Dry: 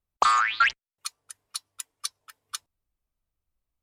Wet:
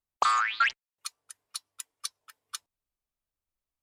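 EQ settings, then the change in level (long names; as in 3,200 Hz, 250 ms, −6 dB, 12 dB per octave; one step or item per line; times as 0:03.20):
low-shelf EQ 200 Hz −8.5 dB
−3.5 dB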